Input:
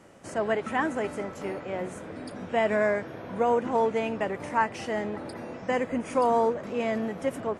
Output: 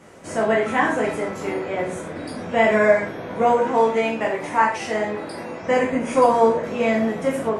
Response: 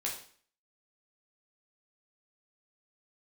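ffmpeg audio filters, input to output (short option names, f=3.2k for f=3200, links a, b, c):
-filter_complex "[0:a]asettb=1/sr,asplit=3[a][b][c];[a]atrim=end=3.524[d];[b]atrim=start=3.52:end=5.62,asetpts=PTS-STARTPTS,afade=t=in:d=0.004:c=qsin,afade=t=out:st=2.096:d=0.004:c=qsin,lowshelf=f=280:g=-6.5[e];[c]atrim=start=5.616[f];[d][e]acrossfade=d=0.004:c1=hsin:c2=qsin[g];[g][f]acrossfade=d=0.004:c1=qsin:c2=hsin[h];[1:a]atrim=start_sample=2205,atrim=end_sample=6174[i];[h][i]afir=irnorm=-1:irlink=0,volume=6dB"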